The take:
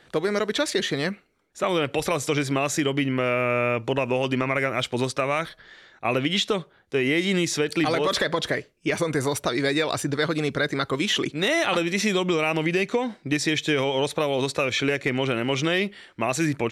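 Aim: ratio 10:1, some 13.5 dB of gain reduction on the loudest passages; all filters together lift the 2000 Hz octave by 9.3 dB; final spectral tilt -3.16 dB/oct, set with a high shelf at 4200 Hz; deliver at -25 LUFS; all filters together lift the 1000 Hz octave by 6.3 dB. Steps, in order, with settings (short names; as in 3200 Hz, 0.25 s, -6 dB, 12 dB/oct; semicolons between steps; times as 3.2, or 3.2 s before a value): bell 1000 Hz +5 dB; bell 2000 Hz +8.5 dB; high shelf 4200 Hz +6.5 dB; compressor 10:1, threshold -27 dBFS; gain +5.5 dB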